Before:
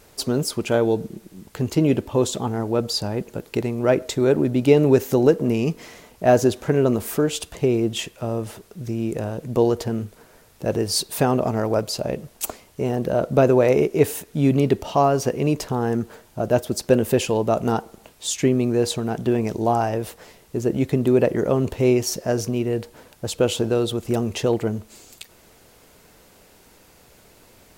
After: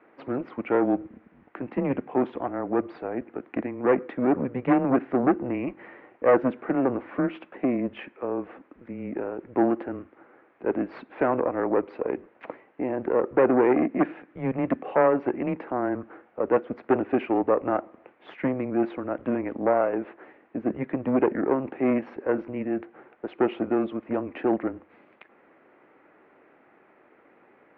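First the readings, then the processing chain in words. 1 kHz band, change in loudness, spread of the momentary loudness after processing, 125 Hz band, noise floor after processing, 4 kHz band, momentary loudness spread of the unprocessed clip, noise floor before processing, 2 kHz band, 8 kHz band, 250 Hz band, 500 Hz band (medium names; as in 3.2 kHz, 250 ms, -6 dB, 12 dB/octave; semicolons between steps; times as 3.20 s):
-2.5 dB, -5.0 dB, 12 LU, -14.5 dB, -59 dBFS, under -20 dB, 11 LU, -53 dBFS, -2.5 dB, under -40 dB, -3.5 dB, -5.5 dB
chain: Chebyshev shaper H 4 -10 dB, 5 -17 dB, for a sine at -3 dBFS; mistuned SSB -130 Hz 400–2300 Hz; trim -5.5 dB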